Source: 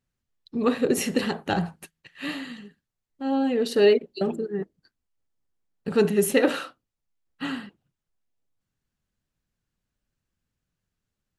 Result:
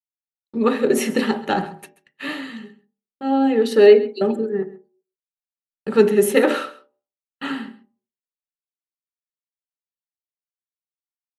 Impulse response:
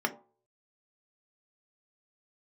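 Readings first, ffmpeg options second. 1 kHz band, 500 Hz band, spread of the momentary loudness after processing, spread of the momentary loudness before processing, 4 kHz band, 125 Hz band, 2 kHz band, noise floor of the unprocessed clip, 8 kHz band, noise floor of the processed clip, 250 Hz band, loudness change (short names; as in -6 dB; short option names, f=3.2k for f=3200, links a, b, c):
+7.0 dB, +7.0 dB, 20 LU, 16 LU, +2.0 dB, n/a, +4.5 dB, -84 dBFS, +1.5 dB, under -85 dBFS, +4.5 dB, +6.5 dB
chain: -filter_complex "[0:a]agate=range=-41dB:threshold=-45dB:ratio=16:detection=peak,aecho=1:1:133:0.119,asplit=2[a][b];[1:a]atrim=start_sample=2205[c];[b][c]afir=irnorm=-1:irlink=0,volume=-5dB[d];[a][d]amix=inputs=2:normalize=0,volume=-1.5dB"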